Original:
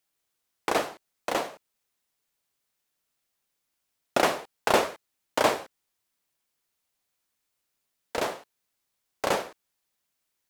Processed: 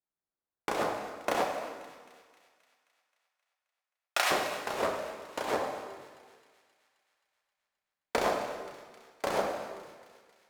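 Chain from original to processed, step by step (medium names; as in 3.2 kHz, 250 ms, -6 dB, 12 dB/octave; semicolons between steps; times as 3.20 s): local Wiener filter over 15 samples; 1.44–4.31 s: high-pass 1.4 kHz 12 dB/octave; gate -48 dBFS, range -15 dB; compressor with a negative ratio -31 dBFS, ratio -1; feedback echo behind a high-pass 264 ms, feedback 61%, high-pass 1.9 kHz, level -16 dB; plate-style reverb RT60 1.6 s, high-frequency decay 0.8×, DRR 2 dB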